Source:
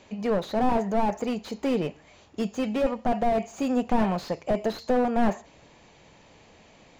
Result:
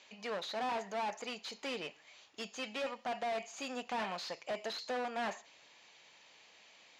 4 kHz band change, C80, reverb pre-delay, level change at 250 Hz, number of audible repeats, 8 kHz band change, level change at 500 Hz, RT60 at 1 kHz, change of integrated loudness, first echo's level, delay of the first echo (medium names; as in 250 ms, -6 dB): -0.5 dB, no reverb, no reverb, -21.0 dB, no echo, no reading, -13.5 dB, no reverb, -12.5 dB, no echo, no echo